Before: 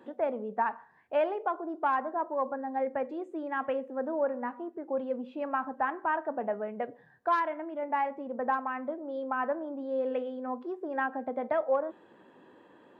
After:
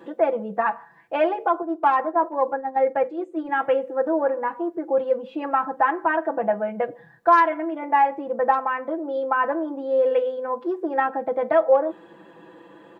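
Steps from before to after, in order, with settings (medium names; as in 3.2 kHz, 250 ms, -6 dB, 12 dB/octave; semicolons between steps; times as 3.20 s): 1.62–3.49 s: gate -35 dBFS, range -7 dB; comb 6 ms, depth 90%; trim +7 dB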